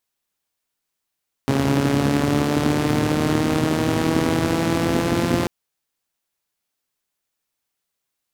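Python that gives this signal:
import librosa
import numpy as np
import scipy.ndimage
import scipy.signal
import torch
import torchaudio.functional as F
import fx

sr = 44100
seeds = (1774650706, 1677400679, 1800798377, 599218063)

y = fx.engine_four_rev(sr, seeds[0], length_s=3.99, rpm=4100, resonances_hz=(120.0, 240.0), end_rpm=5200)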